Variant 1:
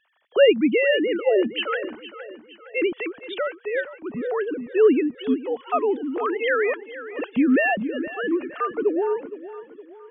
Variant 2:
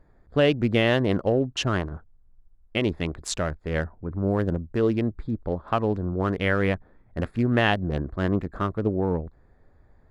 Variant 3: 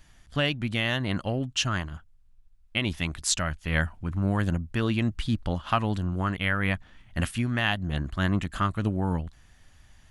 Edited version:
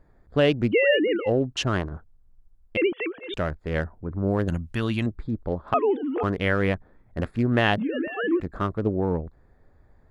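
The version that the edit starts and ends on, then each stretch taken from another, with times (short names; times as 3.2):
2
0.71–1.28 from 1, crossfade 0.06 s
2.77–3.34 from 1
4.48–5.06 from 3
5.74–6.23 from 1
7.78–8.4 from 1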